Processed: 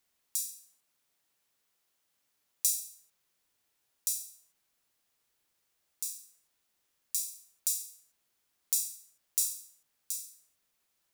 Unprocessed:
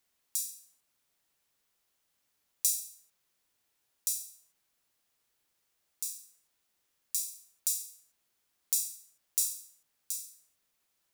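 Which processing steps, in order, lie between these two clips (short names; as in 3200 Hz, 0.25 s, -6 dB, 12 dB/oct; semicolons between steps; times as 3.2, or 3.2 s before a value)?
0.54–2.72 HPF 96 Hz 6 dB/oct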